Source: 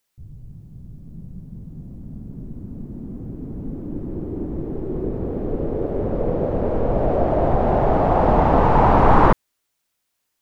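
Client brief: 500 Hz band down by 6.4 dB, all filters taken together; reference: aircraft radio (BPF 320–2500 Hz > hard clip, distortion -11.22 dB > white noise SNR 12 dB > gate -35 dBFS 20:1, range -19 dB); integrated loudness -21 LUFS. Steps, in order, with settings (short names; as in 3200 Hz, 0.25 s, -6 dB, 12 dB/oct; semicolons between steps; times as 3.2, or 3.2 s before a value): BPF 320–2500 Hz; bell 500 Hz -7.5 dB; hard clip -18.5 dBFS; white noise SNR 12 dB; gate -35 dBFS 20:1, range -19 dB; gain +5.5 dB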